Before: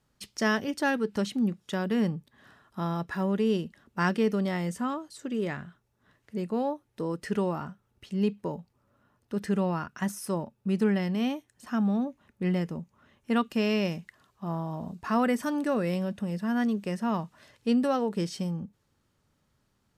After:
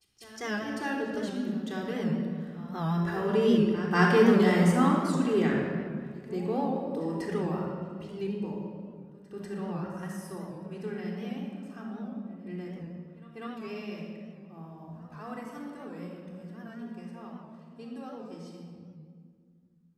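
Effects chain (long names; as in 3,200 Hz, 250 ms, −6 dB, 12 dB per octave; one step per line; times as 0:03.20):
source passing by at 0:04.67, 5 m/s, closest 5.2 metres
parametric band 140 Hz −3.5 dB 0.39 octaves
echo ahead of the sound 194 ms −17 dB
pitch vibrato 0.88 Hz 5.1 cents
rectangular room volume 3,300 cubic metres, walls mixed, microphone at 3.7 metres
wow of a warped record 78 rpm, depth 100 cents
level +1.5 dB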